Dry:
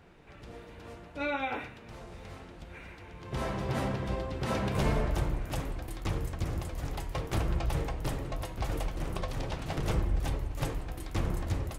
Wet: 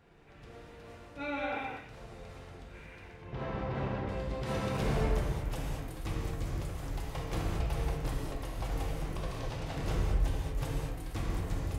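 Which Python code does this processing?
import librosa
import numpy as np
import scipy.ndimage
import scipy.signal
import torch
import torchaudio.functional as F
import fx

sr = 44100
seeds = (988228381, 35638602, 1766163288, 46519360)

y = fx.lowpass(x, sr, hz=2800.0, slope=12, at=(3.13, 4.09))
y = fx.rev_gated(y, sr, seeds[0], gate_ms=250, shape='flat', drr_db=-2.0)
y = F.gain(torch.from_numpy(y), -6.5).numpy()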